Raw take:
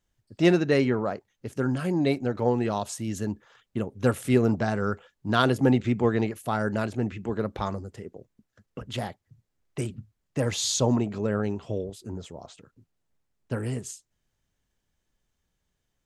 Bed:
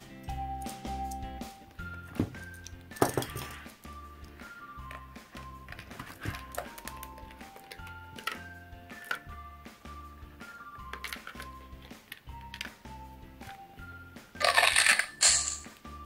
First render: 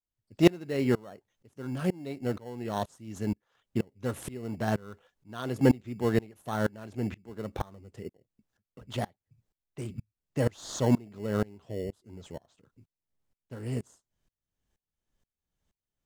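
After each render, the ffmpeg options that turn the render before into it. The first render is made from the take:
-filter_complex "[0:a]asplit=2[s0][s1];[s1]acrusher=samples=18:mix=1:aa=0.000001,volume=0.376[s2];[s0][s2]amix=inputs=2:normalize=0,aeval=exprs='val(0)*pow(10,-27*if(lt(mod(-2.1*n/s,1),2*abs(-2.1)/1000),1-mod(-2.1*n/s,1)/(2*abs(-2.1)/1000),(mod(-2.1*n/s,1)-2*abs(-2.1)/1000)/(1-2*abs(-2.1)/1000))/20)':c=same"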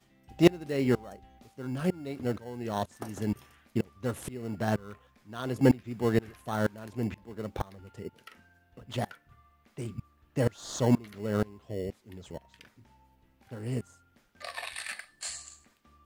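-filter_complex "[1:a]volume=0.168[s0];[0:a][s0]amix=inputs=2:normalize=0"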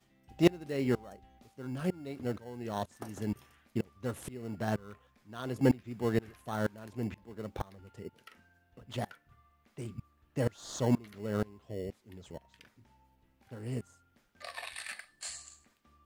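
-af "volume=0.631"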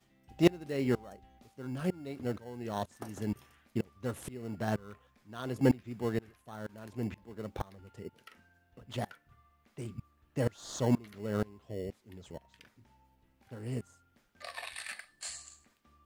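-filter_complex "[0:a]asplit=2[s0][s1];[s0]atrim=end=6.69,asetpts=PTS-STARTPTS,afade=t=out:st=5.95:d=0.74:c=qua:silence=0.298538[s2];[s1]atrim=start=6.69,asetpts=PTS-STARTPTS,afade=t=in:d=0.004:c=hsin:silence=0.298538[s3];[s2][s3]concat=n=2:v=0:a=1"

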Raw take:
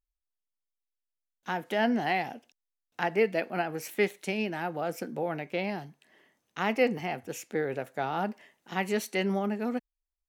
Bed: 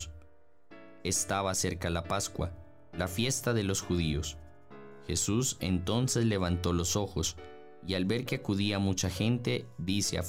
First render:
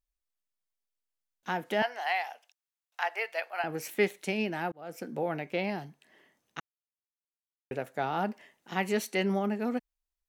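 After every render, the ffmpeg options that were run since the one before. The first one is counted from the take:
-filter_complex "[0:a]asettb=1/sr,asplit=3[s0][s1][s2];[s0]atrim=end=1.824[s3];[s1]atrim=start=1.82:end=3.64,asetpts=PTS-STARTPTS,afade=t=in:d=0.004:c=qsin,afade=t=out:st=1.816:d=0.004:c=qsin,highpass=f=690:w=0.5412,highpass=f=690:w=1.3066[s4];[s2]atrim=start=3.636[s5];[s3][s4]acrossfade=d=0.004:c1=hsin:c2=qsin[s6];[s6][s5]acrossfade=d=0.004:c1=qsin:c2=hsin,asplit=4[s7][s8][s9][s10];[s7]atrim=end=4.72,asetpts=PTS-STARTPTS,afade=t=out:st=4.716:d=0.004:c=hsin[s11];[s8]atrim=start=4.72:end=6.6,asetpts=PTS-STARTPTS,afade=t=in:d=0.46,afade=t=out:st=1.876:d=0.004:c=hsin[s12];[s9]atrim=start=6.6:end=7.71,asetpts=PTS-STARTPTS,volume=0[s13];[s10]atrim=start=7.71,asetpts=PTS-STARTPTS,afade=t=in:d=0.004:c=hsin[s14];[s11][s12][s13][s14]concat=n=4:v=0:a=1"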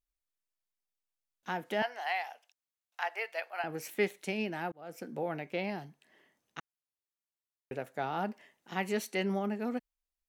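-af "volume=0.668"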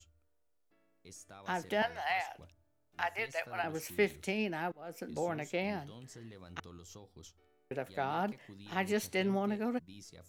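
-filter_complex "[1:a]volume=0.075[s0];[0:a][s0]amix=inputs=2:normalize=0"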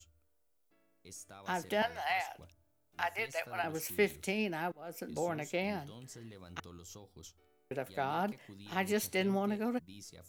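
-af "highshelf=f=8900:g=9,bandreject=f=1800:w=22"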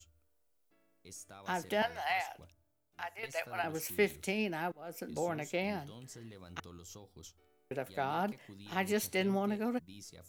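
-filter_complex "[0:a]asplit=2[s0][s1];[s0]atrim=end=3.23,asetpts=PTS-STARTPTS,afade=t=out:st=2.27:d=0.96:silence=0.316228[s2];[s1]atrim=start=3.23,asetpts=PTS-STARTPTS,afade=t=in:d=0.004:c=hsin:silence=0.316228[s3];[s2][s3]concat=n=2:v=0:a=1"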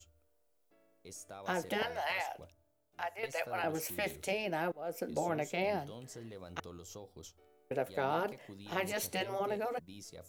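-af "afftfilt=real='re*lt(hypot(re,im),0.126)':imag='im*lt(hypot(re,im),0.126)':win_size=1024:overlap=0.75,equalizer=f=560:w=1.2:g=8"

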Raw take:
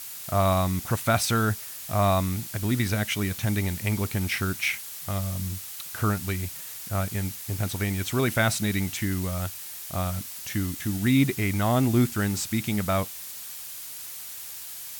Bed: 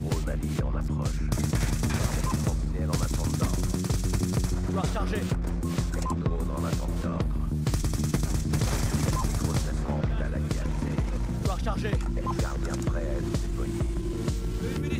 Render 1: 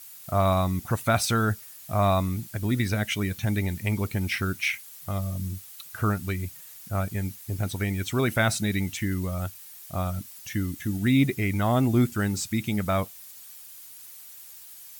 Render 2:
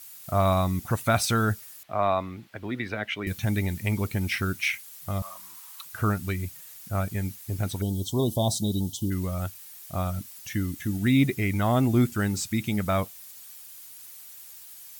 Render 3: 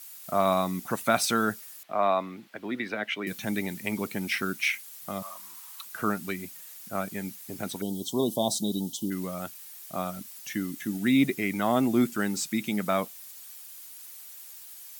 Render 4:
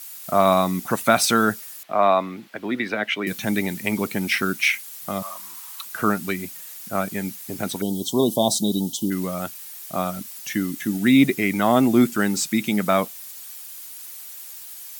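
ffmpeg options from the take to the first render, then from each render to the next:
-af "afftdn=nr=10:nf=-39"
-filter_complex "[0:a]asettb=1/sr,asplit=3[s0][s1][s2];[s0]atrim=end=1.834[s3];[s1]atrim=start=1.83:end=3.27,asetpts=PTS-STARTPTS,afade=t=in:d=0.004:c=qsin,afade=t=out:st=1.436:d=0.004:c=qsin,acrossover=split=290 3600:gain=0.224 1 0.0708[s4][s5][s6];[s4][s5][s6]amix=inputs=3:normalize=0[s7];[s2]atrim=start=3.266[s8];[s3][s7]acrossfade=d=0.004:c1=hsin:c2=qsin[s9];[s9][s8]acrossfade=d=0.004:c1=qsin:c2=hsin,asettb=1/sr,asplit=3[s10][s11][s12];[s10]atrim=end=5.224[s13];[s11]atrim=start=5.22:end=5.85,asetpts=PTS-STARTPTS,afade=t=in:d=0.004:c=qsin,afade=t=out:st=0.626:d=0.004:c=qsin,highpass=f=1000:t=q:w=6.5[s14];[s12]atrim=start=5.846[s15];[s13][s14]acrossfade=d=0.004:c1=hsin:c2=qsin[s16];[s16][s15]acrossfade=d=0.004:c1=qsin:c2=hsin,asplit=3[s17][s18][s19];[s17]afade=t=out:st=7.8:d=0.02[s20];[s18]asuperstop=centerf=1800:order=20:qfactor=0.9,afade=t=in:st=7.8:d=0.02,afade=t=out:st=9.1:d=0.02[s21];[s19]afade=t=in:st=9.1:d=0.02[s22];[s20][s21][s22]amix=inputs=3:normalize=0"
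-af "highpass=f=180:w=0.5412,highpass=f=180:w=1.3066"
-af "volume=2.24,alimiter=limit=0.794:level=0:latency=1"

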